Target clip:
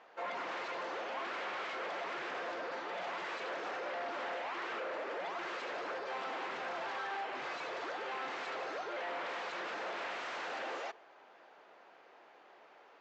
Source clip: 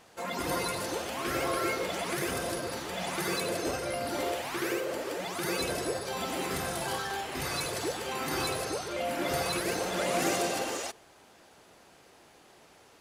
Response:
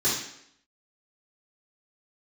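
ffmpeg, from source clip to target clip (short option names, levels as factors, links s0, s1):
-af "aresample=16000,aeval=exprs='0.0237*(abs(mod(val(0)/0.0237+3,4)-2)-1)':c=same,aresample=44100,highpass=510,lowpass=2100,volume=1.12"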